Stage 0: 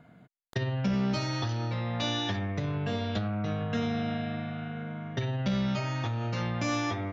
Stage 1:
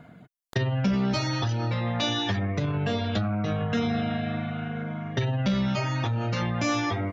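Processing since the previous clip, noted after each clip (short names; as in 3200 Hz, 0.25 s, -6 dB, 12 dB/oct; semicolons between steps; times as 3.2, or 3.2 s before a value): in parallel at -2 dB: limiter -25.5 dBFS, peak gain reduction 8 dB; on the sum: reverb removal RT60 0.63 s; gain +2 dB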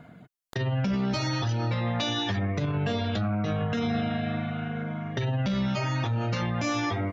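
limiter -19.5 dBFS, peak gain reduction 6 dB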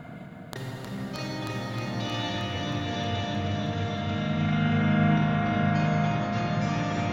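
negative-ratio compressor -33 dBFS, ratio -0.5; multi-head echo 0.313 s, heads all three, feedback 51%, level -6 dB; reverb RT60 4.3 s, pre-delay 27 ms, DRR -2 dB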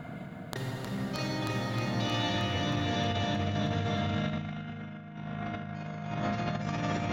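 negative-ratio compressor -29 dBFS, ratio -0.5; gain -2.5 dB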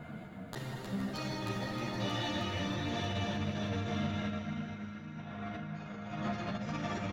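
in parallel at -10 dB: overloaded stage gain 34 dB; on the sum: feedback echo 0.471 s, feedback 51%, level -12 dB; ensemble effect; gain -3 dB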